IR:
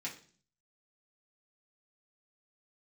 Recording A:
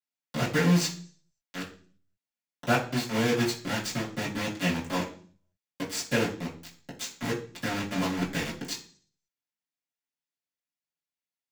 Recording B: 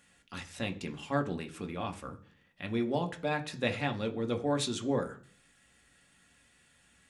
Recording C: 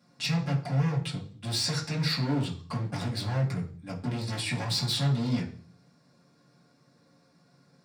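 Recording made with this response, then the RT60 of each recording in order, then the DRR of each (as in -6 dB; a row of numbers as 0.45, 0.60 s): C; 0.45, 0.45, 0.45 s; -10.5, 5.0, -5.0 dB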